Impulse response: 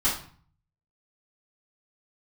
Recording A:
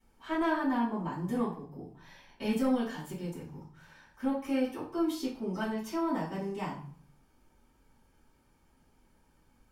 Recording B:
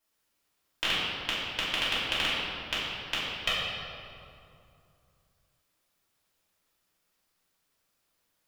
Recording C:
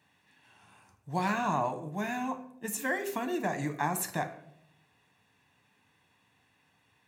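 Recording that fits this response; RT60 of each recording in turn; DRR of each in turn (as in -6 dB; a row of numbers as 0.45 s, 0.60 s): A; 0.45 s, 2.6 s, 0.70 s; -11.0 dB, -10.0 dB, 6.0 dB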